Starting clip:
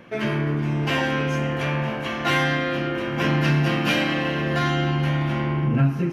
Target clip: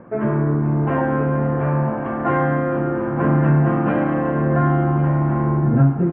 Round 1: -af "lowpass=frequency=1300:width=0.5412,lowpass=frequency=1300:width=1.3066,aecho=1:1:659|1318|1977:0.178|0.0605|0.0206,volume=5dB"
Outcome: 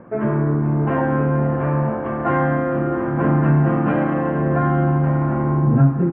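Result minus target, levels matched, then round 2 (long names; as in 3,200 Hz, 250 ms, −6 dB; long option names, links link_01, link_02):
echo 433 ms early
-af "lowpass=frequency=1300:width=0.5412,lowpass=frequency=1300:width=1.3066,aecho=1:1:1092|2184|3276:0.178|0.0605|0.0206,volume=5dB"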